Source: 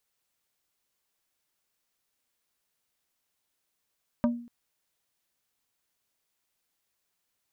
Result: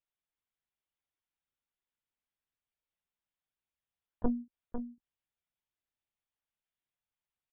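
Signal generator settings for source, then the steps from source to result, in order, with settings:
wood hit plate, length 0.24 s, lowest mode 238 Hz, decay 0.49 s, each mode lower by 5 dB, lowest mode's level -19 dB
gate -38 dBFS, range -13 dB; on a send: delay 506 ms -8 dB; on the sum: LPC vocoder at 8 kHz pitch kept

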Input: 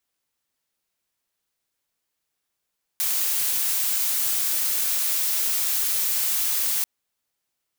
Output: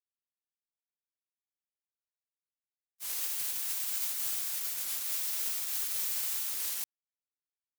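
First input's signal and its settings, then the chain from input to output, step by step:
noise blue, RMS -23.5 dBFS 3.84 s
gate -21 dBFS, range -57 dB; warped record 33 1/3 rpm, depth 160 cents

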